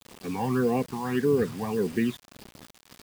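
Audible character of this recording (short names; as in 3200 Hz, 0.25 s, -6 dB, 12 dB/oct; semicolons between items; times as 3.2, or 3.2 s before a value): phasing stages 12, 1.7 Hz, lowest notch 400–1400 Hz; a quantiser's noise floor 8-bit, dither none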